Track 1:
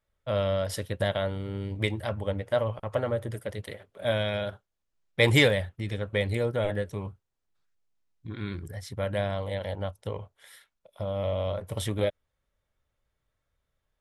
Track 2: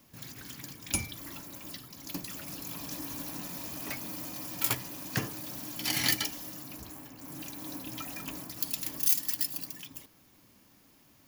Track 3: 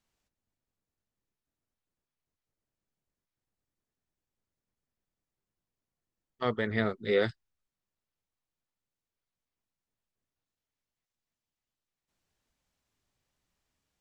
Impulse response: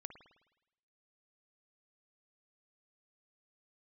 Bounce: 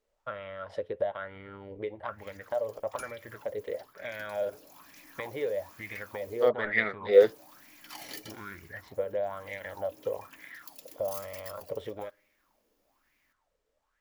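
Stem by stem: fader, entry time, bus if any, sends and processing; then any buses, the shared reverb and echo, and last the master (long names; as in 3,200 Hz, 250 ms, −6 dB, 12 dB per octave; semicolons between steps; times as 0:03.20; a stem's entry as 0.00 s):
−5.5 dB, 0.00 s, send −14 dB, low-pass filter 2,600 Hz 12 dB per octave; downward compressor 12 to 1, threshold −33 dBFS, peak gain reduction 16.5 dB; pitch vibrato 1.5 Hz 7.2 cents
−16.0 dB, 2.05 s, muted 0:06.49–0:07.13, no send, no processing
−4.5 dB, 0.00 s, no send, no processing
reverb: on, RT60 0.95 s, pre-delay 52 ms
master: parametric band 110 Hz −9.5 dB 1.8 octaves; auto-filter bell 1.1 Hz 430–2,200 Hz +18 dB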